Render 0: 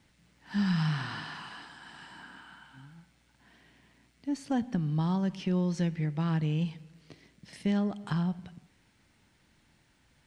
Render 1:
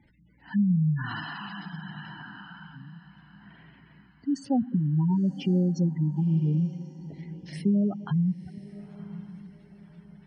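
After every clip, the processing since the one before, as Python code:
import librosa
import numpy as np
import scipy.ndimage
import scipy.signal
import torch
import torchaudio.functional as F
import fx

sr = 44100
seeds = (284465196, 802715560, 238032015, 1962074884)

y = fx.spec_gate(x, sr, threshold_db=-15, keep='strong')
y = fx.echo_diffused(y, sr, ms=1040, feedback_pct=41, wet_db=-16)
y = y * librosa.db_to_amplitude(5.0)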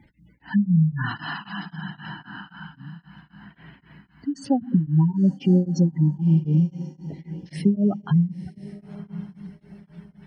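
y = x * np.abs(np.cos(np.pi * 3.8 * np.arange(len(x)) / sr))
y = y * librosa.db_to_amplitude(7.5)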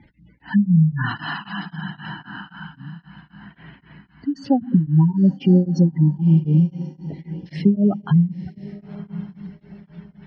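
y = scipy.signal.sosfilt(scipy.signal.butter(4, 4900.0, 'lowpass', fs=sr, output='sos'), x)
y = y * librosa.db_to_amplitude(3.5)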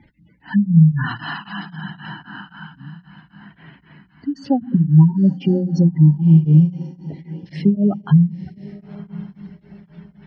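y = fx.hum_notches(x, sr, base_hz=60, count=3)
y = fx.dynamic_eq(y, sr, hz=150.0, q=4.0, threshold_db=-28.0, ratio=4.0, max_db=6)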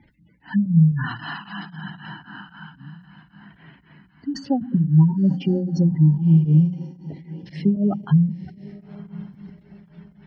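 y = fx.sustainer(x, sr, db_per_s=130.0)
y = y * librosa.db_to_amplitude(-4.0)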